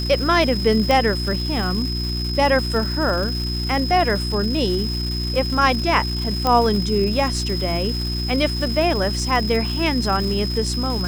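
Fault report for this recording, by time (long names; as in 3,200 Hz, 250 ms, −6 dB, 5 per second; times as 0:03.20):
surface crackle 530 per second −27 dBFS
mains hum 60 Hz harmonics 6 −25 dBFS
whistle 5,100 Hz −27 dBFS
0:00.91: click
0:06.47: click −6 dBFS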